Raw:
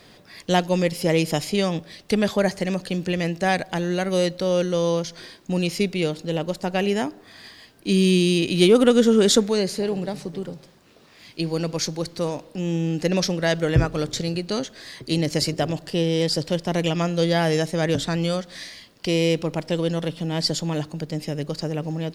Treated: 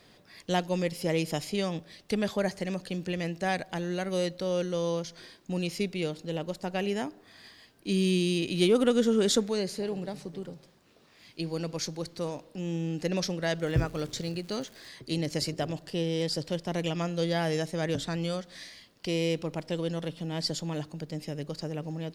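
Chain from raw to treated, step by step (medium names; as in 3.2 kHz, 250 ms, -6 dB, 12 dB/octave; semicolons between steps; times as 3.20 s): 13.62–14.87 s: crackle 380 per s -34 dBFS; trim -8 dB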